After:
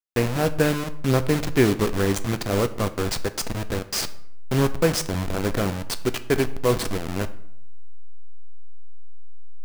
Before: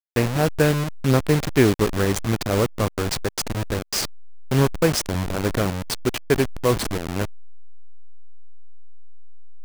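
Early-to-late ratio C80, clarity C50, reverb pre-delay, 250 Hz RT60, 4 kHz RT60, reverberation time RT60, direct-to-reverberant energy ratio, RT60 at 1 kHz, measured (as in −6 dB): 18.5 dB, 15.5 dB, 3 ms, 0.80 s, 0.50 s, 0.75 s, 10.0 dB, 0.65 s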